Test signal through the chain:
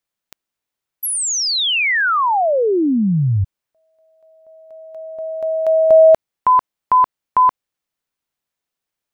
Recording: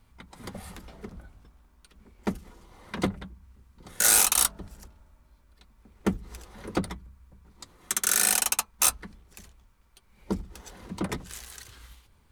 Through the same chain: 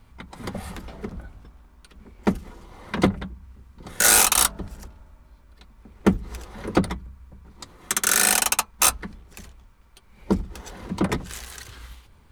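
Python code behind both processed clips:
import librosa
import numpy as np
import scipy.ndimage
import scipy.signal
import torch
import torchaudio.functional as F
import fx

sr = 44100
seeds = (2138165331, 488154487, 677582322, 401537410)

y = fx.peak_eq(x, sr, hz=14000.0, db=-5.5, octaves=2.2)
y = F.gain(torch.from_numpy(y), 8.0).numpy()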